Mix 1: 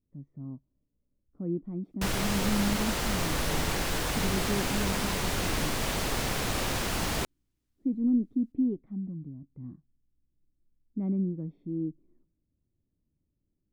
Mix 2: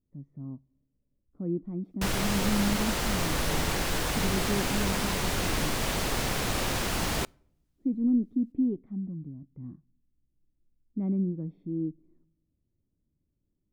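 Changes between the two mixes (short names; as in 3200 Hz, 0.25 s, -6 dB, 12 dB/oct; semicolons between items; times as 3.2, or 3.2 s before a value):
speech: send +11.0 dB; background: send on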